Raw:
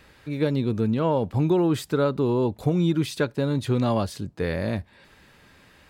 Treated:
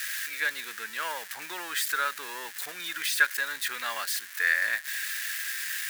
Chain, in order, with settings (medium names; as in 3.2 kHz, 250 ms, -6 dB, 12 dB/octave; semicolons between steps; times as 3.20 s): zero-crossing glitches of -26 dBFS; resonant high-pass 1.7 kHz, resonance Q 5.9